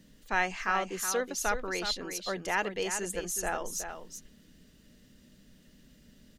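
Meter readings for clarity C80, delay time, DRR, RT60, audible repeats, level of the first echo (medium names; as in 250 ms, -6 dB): no reverb, 370 ms, no reverb, no reverb, 1, -8.5 dB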